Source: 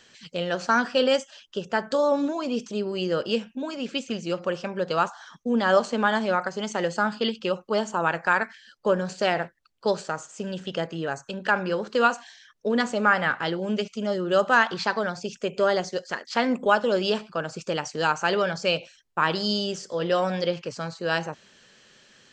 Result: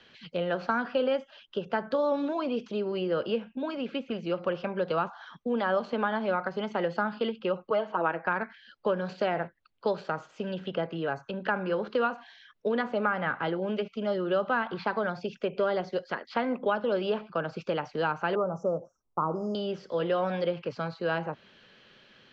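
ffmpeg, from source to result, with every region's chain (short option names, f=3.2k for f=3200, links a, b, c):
-filter_complex "[0:a]asettb=1/sr,asplit=3[a][b][c];[a]atrim=end=7.704[d];[b]atrim=start=7.7:end=8.26,asetpts=PTS-STARTPTS,afade=t=in:d=0.004:c=qsin,afade=t=out:st=0.556:d=0.004:c=qsin,highpass=310,lowpass=2.8k,aecho=1:1:6.3:0.79,atrim=end_sample=24696[e];[c]atrim=start=8.256[f];[d][e]acrossfade=d=0.004:c1=hsin:c2=qsin[g];[g][f]acrossfade=d=0.004:c1=qsin:c2=hsin,asettb=1/sr,asplit=3[h][i][j];[h]atrim=end=18.354[k];[i]atrim=start=18.35:end=19.55,asetpts=PTS-STARTPTS,afade=t=in:d=0.004:c=qsin,afade=t=out:st=1.196:d=0.004:c=qsin,acrusher=bits=8:mode=log:mix=0:aa=0.000001,asuperstop=centerf=2800:order=20:qfactor=0.62[l];[j]atrim=start=19.546[m];[k][l]acrossfade=d=0.004:c1=hsin:c2=qsin[n];[n][m]acrossfade=d=0.004:c1=qsin:c2=hsin,lowpass=f=3.9k:w=0.5412,lowpass=f=3.9k:w=1.3066,bandreject=f=1.8k:w=17,acrossover=split=99|360|2000[o][p][q][r];[o]acompressor=threshold=-59dB:ratio=4[s];[p]acompressor=threshold=-35dB:ratio=4[t];[q]acompressor=threshold=-26dB:ratio=4[u];[r]acompressor=threshold=-47dB:ratio=4[v];[s][t][u][v]amix=inputs=4:normalize=0"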